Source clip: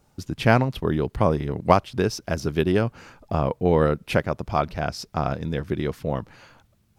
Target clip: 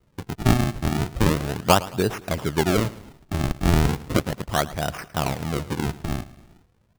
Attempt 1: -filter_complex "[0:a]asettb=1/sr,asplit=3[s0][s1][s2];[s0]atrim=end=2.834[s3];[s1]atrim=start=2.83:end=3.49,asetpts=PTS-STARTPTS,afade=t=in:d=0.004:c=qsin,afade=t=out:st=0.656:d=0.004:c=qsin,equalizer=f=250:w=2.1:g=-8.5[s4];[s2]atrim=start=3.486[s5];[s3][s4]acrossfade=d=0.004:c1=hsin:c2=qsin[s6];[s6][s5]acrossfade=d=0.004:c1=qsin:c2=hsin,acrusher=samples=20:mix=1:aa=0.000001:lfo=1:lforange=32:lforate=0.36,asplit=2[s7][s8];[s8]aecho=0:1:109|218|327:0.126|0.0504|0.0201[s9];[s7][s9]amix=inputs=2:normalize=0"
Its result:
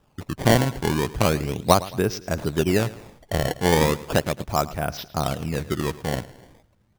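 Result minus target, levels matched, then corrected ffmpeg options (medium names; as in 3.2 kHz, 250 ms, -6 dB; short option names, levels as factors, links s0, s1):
decimation with a swept rate: distortion -9 dB
-filter_complex "[0:a]asettb=1/sr,asplit=3[s0][s1][s2];[s0]atrim=end=2.834[s3];[s1]atrim=start=2.83:end=3.49,asetpts=PTS-STARTPTS,afade=t=in:d=0.004:c=qsin,afade=t=out:st=0.656:d=0.004:c=qsin,equalizer=f=250:w=2.1:g=-8.5[s4];[s2]atrim=start=3.486[s5];[s3][s4]acrossfade=d=0.004:c1=hsin:c2=qsin[s6];[s6][s5]acrossfade=d=0.004:c1=qsin:c2=hsin,acrusher=samples=51:mix=1:aa=0.000001:lfo=1:lforange=81.6:lforate=0.36,asplit=2[s7][s8];[s8]aecho=0:1:109|218|327:0.126|0.0504|0.0201[s9];[s7][s9]amix=inputs=2:normalize=0"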